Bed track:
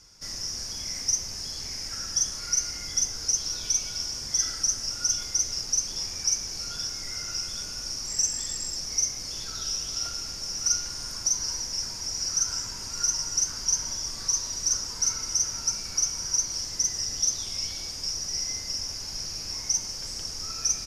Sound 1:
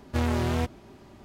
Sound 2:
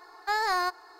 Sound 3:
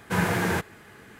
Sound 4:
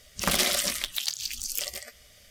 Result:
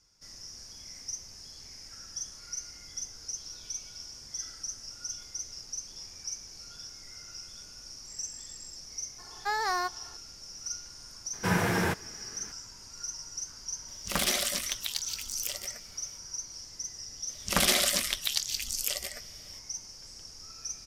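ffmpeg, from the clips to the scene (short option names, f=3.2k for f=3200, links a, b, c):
-filter_complex "[4:a]asplit=2[a][b];[0:a]volume=-12.5dB[c];[b]aresample=32000,aresample=44100[d];[2:a]atrim=end=0.99,asetpts=PTS-STARTPTS,volume=-3dB,afade=t=in:d=0.004:c=hsin,afade=t=out:st=0.986:d=0.004:c=hsin,adelay=9180[e];[3:a]atrim=end=1.19,asetpts=PTS-STARTPTS,volume=-2.5dB,afade=t=in:d=0.004:c=hsin,afade=t=out:st=1.186:d=0.004:c=hsin,adelay=11330[f];[a]atrim=end=2.3,asetpts=PTS-STARTPTS,volume=-4dB,afade=t=in:d=0.004:c=hsin,afade=t=out:st=2.296:d=0.004:c=hsin,adelay=13880[g];[d]atrim=end=2.3,asetpts=PTS-STARTPTS,afade=t=in:d=0.004:c=hsin,afade=t=out:st=2.296:d=0.004:c=hsin,adelay=17290[h];[c][e][f][g][h]amix=inputs=5:normalize=0"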